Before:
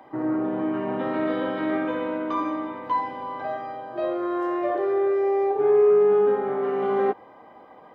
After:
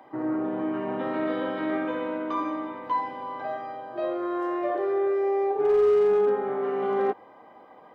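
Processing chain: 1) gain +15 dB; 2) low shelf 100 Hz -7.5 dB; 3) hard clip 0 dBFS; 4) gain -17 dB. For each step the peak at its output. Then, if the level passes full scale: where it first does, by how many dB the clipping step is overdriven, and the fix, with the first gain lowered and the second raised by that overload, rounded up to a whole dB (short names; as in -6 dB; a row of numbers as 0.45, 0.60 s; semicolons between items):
+3.5, +3.0, 0.0, -17.0 dBFS; step 1, 3.0 dB; step 1 +12 dB, step 4 -14 dB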